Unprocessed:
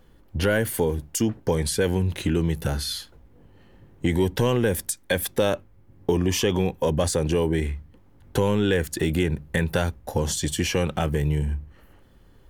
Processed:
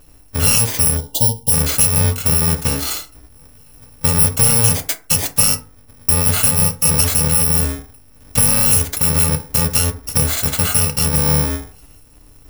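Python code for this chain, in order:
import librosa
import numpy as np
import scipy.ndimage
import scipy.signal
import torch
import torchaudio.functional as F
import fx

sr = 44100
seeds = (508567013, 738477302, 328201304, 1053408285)

y = fx.bit_reversed(x, sr, seeds[0], block=128)
y = fx.spec_erase(y, sr, start_s=0.97, length_s=0.55, low_hz=980.0, high_hz=2800.0)
y = fx.rev_fdn(y, sr, rt60_s=0.36, lf_ratio=1.0, hf_ratio=0.5, size_ms=20.0, drr_db=5.0)
y = y * 10.0 ** (7.0 / 20.0)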